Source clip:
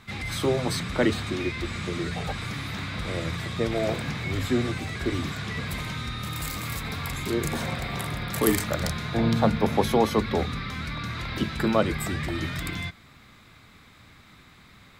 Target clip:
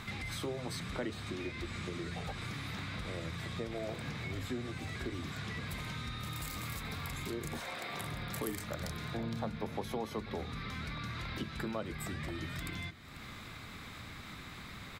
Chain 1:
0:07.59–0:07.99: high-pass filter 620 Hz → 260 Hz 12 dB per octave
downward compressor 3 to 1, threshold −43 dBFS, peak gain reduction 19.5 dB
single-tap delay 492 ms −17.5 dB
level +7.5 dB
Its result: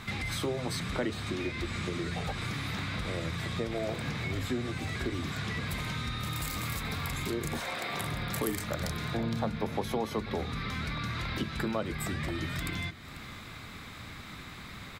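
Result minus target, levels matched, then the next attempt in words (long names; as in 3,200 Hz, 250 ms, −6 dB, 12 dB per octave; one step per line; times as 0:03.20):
downward compressor: peak gain reduction −6 dB
0:07.59–0:07.99: high-pass filter 620 Hz → 260 Hz 12 dB per octave
downward compressor 3 to 1, threshold −52 dBFS, peak gain reduction 25.5 dB
single-tap delay 492 ms −17.5 dB
level +7.5 dB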